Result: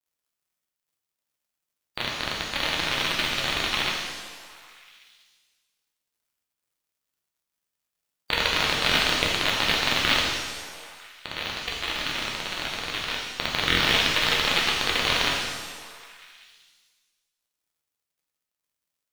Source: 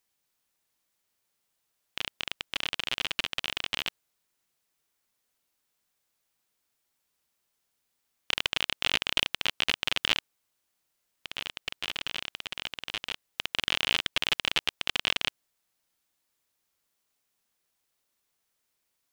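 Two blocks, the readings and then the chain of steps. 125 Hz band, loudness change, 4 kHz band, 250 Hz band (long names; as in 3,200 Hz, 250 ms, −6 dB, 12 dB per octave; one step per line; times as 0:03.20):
+12.5 dB, +6.0 dB, +5.0 dB, +12.0 dB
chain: spectral magnitudes quantised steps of 30 dB
on a send: echo through a band-pass that steps 190 ms, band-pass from 250 Hz, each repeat 0.7 octaves, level −11.5 dB
on the sum: log-companded quantiser 6 bits
buffer that repeats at 0:00.45/0:09.13/0:10.74/0:13.66, samples 1,024, times 3
reverb with rising layers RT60 1.3 s, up +7 semitones, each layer −8 dB, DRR −3 dB
level +2 dB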